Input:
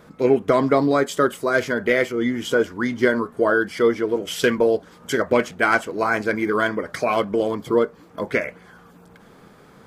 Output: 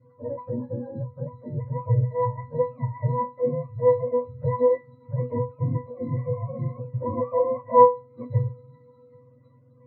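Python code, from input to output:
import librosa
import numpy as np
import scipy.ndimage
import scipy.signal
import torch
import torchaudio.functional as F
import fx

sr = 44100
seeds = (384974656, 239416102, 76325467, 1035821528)

p1 = fx.octave_mirror(x, sr, pivot_hz=480.0)
p2 = fx.rider(p1, sr, range_db=10, speed_s=0.5)
p3 = p1 + F.gain(torch.from_numpy(p2), -2.0).numpy()
p4 = fx.spec_box(p3, sr, start_s=6.93, length_s=0.89, low_hz=500.0, high_hz=1200.0, gain_db=11)
y = fx.octave_resonator(p4, sr, note='B', decay_s=0.25)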